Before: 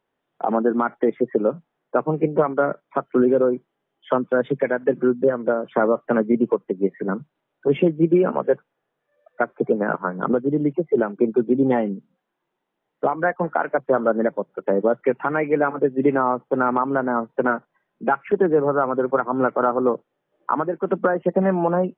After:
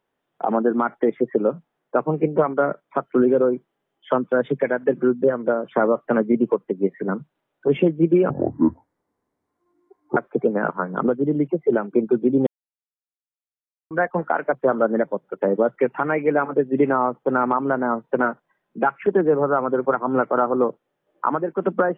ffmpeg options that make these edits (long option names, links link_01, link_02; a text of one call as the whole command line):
ffmpeg -i in.wav -filter_complex "[0:a]asplit=5[link_01][link_02][link_03][link_04][link_05];[link_01]atrim=end=8.304[link_06];[link_02]atrim=start=8.3:end=9.42,asetpts=PTS-STARTPTS,asetrate=26460,aresample=44100[link_07];[link_03]atrim=start=9.416:end=11.72,asetpts=PTS-STARTPTS,afade=type=out:start_time=2.3:duration=0.004:curve=hsin[link_08];[link_04]atrim=start=11.72:end=13.16,asetpts=PTS-STARTPTS,volume=0[link_09];[link_05]atrim=start=13.16,asetpts=PTS-STARTPTS,afade=type=in:duration=0.004:curve=hsin[link_10];[link_06][link_07]acrossfade=duration=0.004:curve1=hsin:curve2=hsin[link_11];[link_08][link_09][link_10]concat=n=3:v=0:a=1[link_12];[link_11][link_12]acrossfade=duration=0.004:curve1=hsin:curve2=hsin" out.wav